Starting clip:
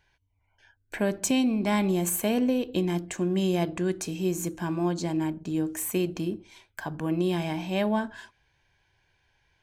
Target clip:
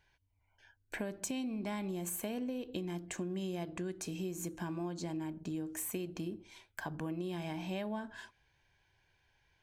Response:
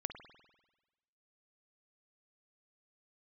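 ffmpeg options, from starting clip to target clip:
-af "acompressor=threshold=-32dB:ratio=6,volume=-4dB"

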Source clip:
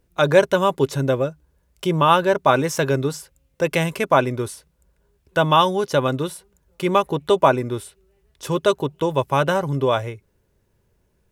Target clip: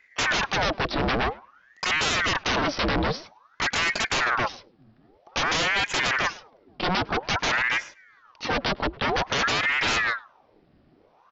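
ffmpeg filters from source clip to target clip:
ffmpeg -i in.wav -filter_complex "[0:a]acrossover=split=310[link_01][link_02];[link_02]acompressor=threshold=-19dB:ratio=4[link_03];[link_01][link_03]amix=inputs=2:normalize=0,aresample=11025,aeval=exprs='0.0596*(abs(mod(val(0)/0.0596+3,4)-2)-1)':channel_layout=same,aresample=44100,asplit=2[link_04][link_05];[link_05]adelay=104,lowpass=frequency=1900:poles=1,volume=-22dB,asplit=2[link_06][link_07];[link_07]adelay=104,lowpass=frequency=1900:poles=1,volume=0.17[link_08];[link_04][link_06][link_08]amix=inputs=3:normalize=0,aeval=exprs='val(0)*sin(2*PI*1100*n/s+1100*0.85/0.51*sin(2*PI*0.51*n/s))':channel_layout=same,volume=8.5dB" out.wav

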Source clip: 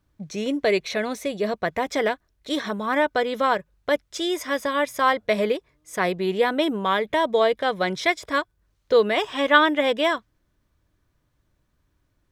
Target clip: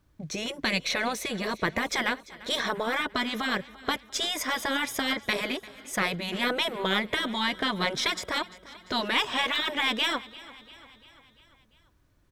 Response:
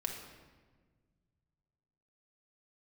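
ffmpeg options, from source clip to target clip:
-af "afftfilt=real='re*lt(hypot(re,im),0.282)':imag='im*lt(hypot(re,im),0.282)':win_size=1024:overlap=0.75,aecho=1:1:345|690|1035|1380|1725:0.106|0.0614|0.0356|0.0207|0.012,aeval=exprs='0.178*(cos(1*acos(clip(val(0)/0.178,-1,1)))-cos(1*PI/2))+0.00398*(cos(6*acos(clip(val(0)/0.178,-1,1)))-cos(6*PI/2))':channel_layout=same,volume=3dB"

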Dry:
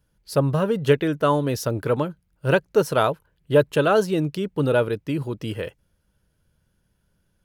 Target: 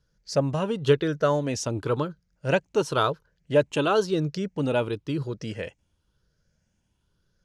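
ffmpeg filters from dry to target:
ffmpeg -i in.wav -af "afftfilt=real='re*pow(10,7/40*sin(2*PI*(0.6*log(max(b,1)*sr/1024/100)/log(2)-(0.96)*(pts-256)/sr)))':imag='im*pow(10,7/40*sin(2*PI*(0.6*log(max(b,1)*sr/1024/100)/log(2)-(0.96)*(pts-256)/sr)))':win_size=1024:overlap=0.75,lowpass=frequency=6400:width_type=q:width=2.2,volume=-4dB" out.wav

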